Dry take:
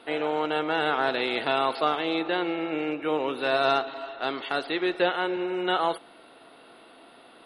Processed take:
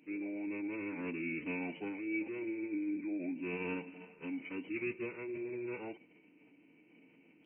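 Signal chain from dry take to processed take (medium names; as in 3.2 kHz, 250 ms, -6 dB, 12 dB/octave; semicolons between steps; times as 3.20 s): cascade formant filter i; formant-preserving pitch shift -7 st; tilt shelf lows -6 dB, about 1.1 kHz; trim +5 dB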